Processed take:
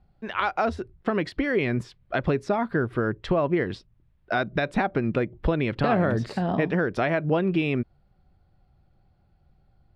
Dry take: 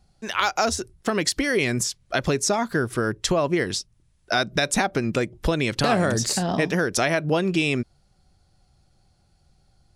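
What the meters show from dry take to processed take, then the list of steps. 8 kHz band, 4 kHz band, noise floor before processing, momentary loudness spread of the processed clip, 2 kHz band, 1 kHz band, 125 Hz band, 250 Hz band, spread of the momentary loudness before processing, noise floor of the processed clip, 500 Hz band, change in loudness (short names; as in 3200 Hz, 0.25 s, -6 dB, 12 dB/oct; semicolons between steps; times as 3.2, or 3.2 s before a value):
under -25 dB, -12.5 dB, -63 dBFS, 6 LU, -4.0 dB, -2.0 dB, -0.5 dB, -0.5 dB, 5 LU, -64 dBFS, -1.0 dB, -2.5 dB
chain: air absorption 450 m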